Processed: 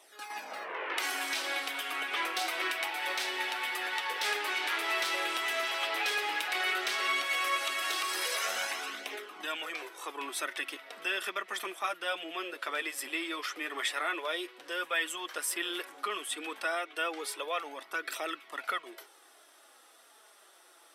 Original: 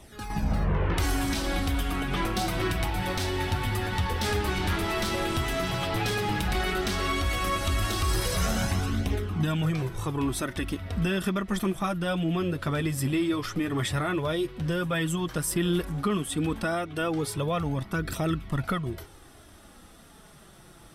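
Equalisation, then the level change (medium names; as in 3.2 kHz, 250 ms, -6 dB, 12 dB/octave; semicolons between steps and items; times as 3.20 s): Bessel high-pass 610 Hz, order 8; dynamic bell 2.3 kHz, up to +7 dB, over -48 dBFS, Q 1.1; -3.5 dB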